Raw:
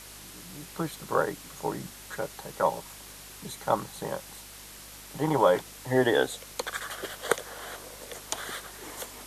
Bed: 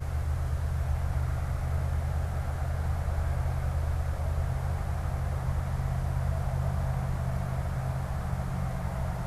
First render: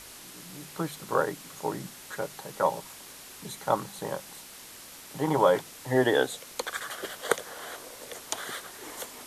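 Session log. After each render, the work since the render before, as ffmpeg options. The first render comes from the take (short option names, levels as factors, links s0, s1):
-af "bandreject=f=50:t=h:w=4,bandreject=f=100:t=h:w=4,bandreject=f=150:t=h:w=4,bandreject=f=200:t=h:w=4"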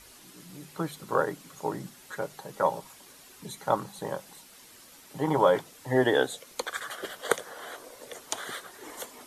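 -af "afftdn=nr=8:nf=-47"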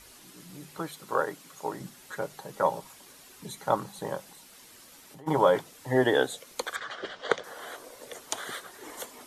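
-filter_complex "[0:a]asettb=1/sr,asplit=3[s0][s1][s2];[s0]atrim=end=0.794[s3];[s1]atrim=start=0.79:end=1.81,asetpts=PTS-STARTPTS,afade=t=in:d=0.004:c=qsin,afade=t=out:st=1.016:d=0.004:c=qsin,lowshelf=f=270:g=-9.5[s4];[s2]atrim=start=1.806[s5];[s3][s4]acrossfade=d=0.004:c1=hsin:c2=qsin[s6];[s6][s5]acrossfade=d=0.004:c1=qsin:c2=hsin,asplit=3[s7][s8][s9];[s7]afade=t=out:st=4.27:d=0.02[s10];[s8]acompressor=threshold=0.00501:ratio=6:attack=3.2:release=140:knee=1:detection=peak,afade=t=in:st=4.27:d=0.02,afade=t=out:st=5.26:d=0.02[s11];[s9]afade=t=in:st=5.26:d=0.02[s12];[s10][s11][s12]amix=inputs=3:normalize=0,asettb=1/sr,asplit=3[s13][s14][s15];[s13]atrim=end=6.764[s16];[s14]atrim=start=6.76:end=7.44,asetpts=PTS-STARTPTS,afade=t=in:d=0.004:c=qsin,afade=t=out:st=0.676:d=0.004:c=qsin,lowpass=f=5400:w=0.5412,lowpass=f=5400:w=1.3066[s17];[s15]atrim=start=7.436[s18];[s16][s17]acrossfade=d=0.004:c1=hsin:c2=qsin[s19];[s19][s18]acrossfade=d=0.004:c1=qsin:c2=hsin"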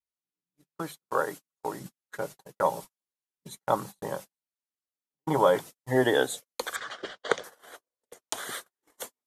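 -af "agate=range=0.00355:threshold=0.0112:ratio=16:detection=peak,adynamicequalizer=threshold=0.00398:dfrequency=5600:dqfactor=0.7:tfrequency=5600:tqfactor=0.7:attack=5:release=100:ratio=0.375:range=3:mode=boostabove:tftype=highshelf"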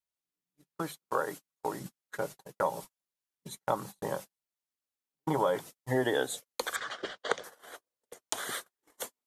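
-af "acompressor=threshold=0.0447:ratio=2.5"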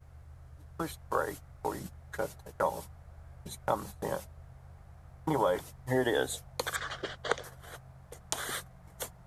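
-filter_complex "[1:a]volume=0.0841[s0];[0:a][s0]amix=inputs=2:normalize=0"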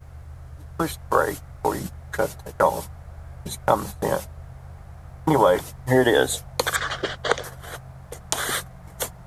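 -af "volume=3.55,alimiter=limit=0.891:level=0:latency=1"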